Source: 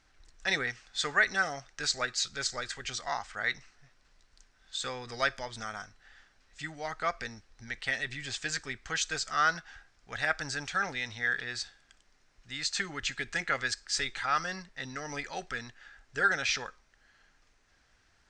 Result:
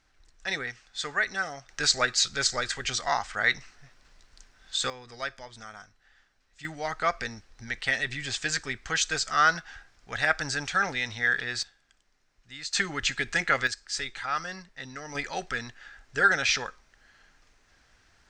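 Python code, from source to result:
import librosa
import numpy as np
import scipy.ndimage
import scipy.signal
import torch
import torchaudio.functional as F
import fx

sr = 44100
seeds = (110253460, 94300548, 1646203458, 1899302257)

y = fx.gain(x, sr, db=fx.steps((0.0, -1.5), (1.69, 7.0), (4.9, -5.0), (6.65, 5.0), (11.63, -4.0), (12.73, 6.0), (13.67, -1.0), (15.15, 5.0)))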